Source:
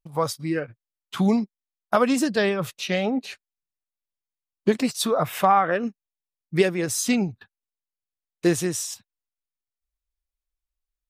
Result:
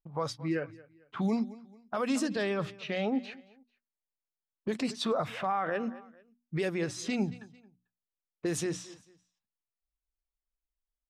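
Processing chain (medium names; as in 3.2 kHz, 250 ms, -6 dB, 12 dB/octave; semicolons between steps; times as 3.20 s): level-controlled noise filter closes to 1.2 kHz, open at -15.5 dBFS; on a send: feedback delay 222 ms, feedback 35%, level -22.5 dB; on the sum: peak limiter -17 dBFS, peak gain reduction 10.5 dB; hum notches 60/120/180/240/300 Hz; trim -4.5 dB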